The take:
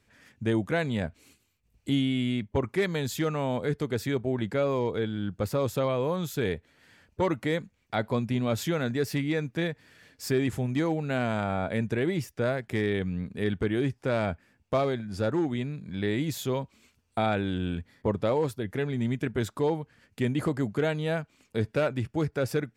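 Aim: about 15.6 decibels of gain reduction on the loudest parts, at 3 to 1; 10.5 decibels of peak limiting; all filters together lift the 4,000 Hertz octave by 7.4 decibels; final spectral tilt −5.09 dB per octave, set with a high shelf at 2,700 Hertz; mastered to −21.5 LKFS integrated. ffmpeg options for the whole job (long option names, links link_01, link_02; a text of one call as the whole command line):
ffmpeg -i in.wav -af "highshelf=frequency=2700:gain=3.5,equalizer=frequency=4000:width_type=o:gain=6.5,acompressor=threshold=-44dB:ratio=3,volume=24.5dB,alimiter=limit=-11dB:level=0:latency=1" out.wav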